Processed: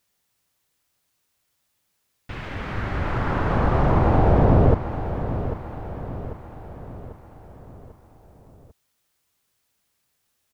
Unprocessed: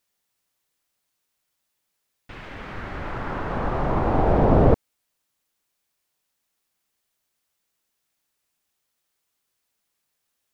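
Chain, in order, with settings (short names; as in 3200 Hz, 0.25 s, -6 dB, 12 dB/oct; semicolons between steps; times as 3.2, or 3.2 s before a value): bell 89 Hz +7 dB 1.7 oct; compressor 3:1, threshold -18 dBFS, peak gain reduction 8 dB; feedback echo 0.794 s, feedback 51%, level -11 dB; gain +4 dB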